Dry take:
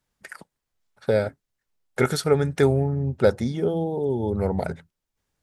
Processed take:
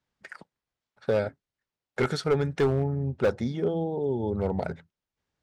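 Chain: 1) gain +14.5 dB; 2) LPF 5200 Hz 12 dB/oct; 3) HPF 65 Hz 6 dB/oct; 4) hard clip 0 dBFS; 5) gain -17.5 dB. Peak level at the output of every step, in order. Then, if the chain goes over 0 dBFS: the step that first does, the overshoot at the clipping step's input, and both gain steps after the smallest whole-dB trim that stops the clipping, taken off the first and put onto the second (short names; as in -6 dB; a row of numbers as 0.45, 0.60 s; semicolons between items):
+8.5, +8.5, +8.5, 0.0, -17.5 dBFS; step 1, 8.5 dB; step 1 +5.5 dB, step 5 -8.5 dB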